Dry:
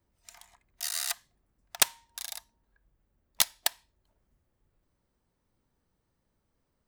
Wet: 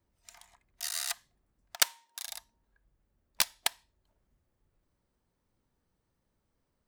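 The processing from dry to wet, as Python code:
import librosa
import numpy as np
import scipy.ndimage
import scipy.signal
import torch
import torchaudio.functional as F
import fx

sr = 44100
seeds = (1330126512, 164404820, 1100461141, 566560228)

y = fx.highpass(x, sr, hz=410.0, slope=12, at=(1.76, 2.27))
y = fx.doppler_dist(y, sr, depth_ms=0.38)
y = y * librosa.db_to_amplitude(-1.5)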